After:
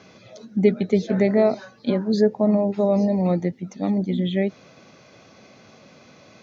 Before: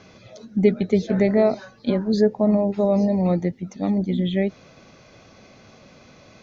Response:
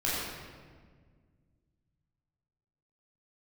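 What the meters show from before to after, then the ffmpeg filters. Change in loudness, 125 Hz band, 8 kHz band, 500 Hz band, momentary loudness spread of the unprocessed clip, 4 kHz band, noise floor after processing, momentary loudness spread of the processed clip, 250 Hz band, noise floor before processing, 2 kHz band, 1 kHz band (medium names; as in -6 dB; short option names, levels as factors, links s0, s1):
-0.5 dB, -0.5 dB, no reading, 0.0 dB, 9 LU, 0.0 dB, -51 dBFS, 9 LU, -0.5 dB, -50 dBFS, 0.0 dB, 0.0 dB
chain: -af "highpass=120"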